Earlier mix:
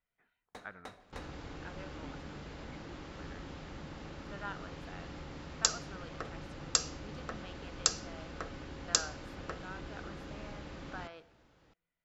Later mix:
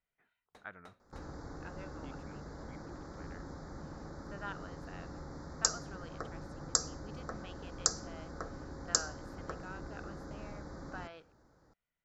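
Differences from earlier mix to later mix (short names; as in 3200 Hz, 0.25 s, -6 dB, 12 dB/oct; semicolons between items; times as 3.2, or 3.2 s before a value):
first sound -7.5 dB; second sound: add Butterworth band-stop 2800 Hz, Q 0.91; reverb: off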